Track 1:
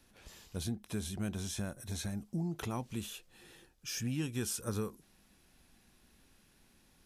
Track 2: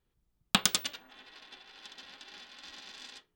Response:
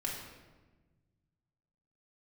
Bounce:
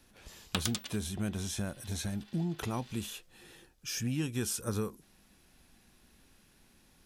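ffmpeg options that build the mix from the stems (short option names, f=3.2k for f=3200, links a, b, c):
-filter_complex "[0:a]volume=2.5dB[a];[1:a]volume=-8.5dB[b];[a][b]amix=inputs=2:normalize=0"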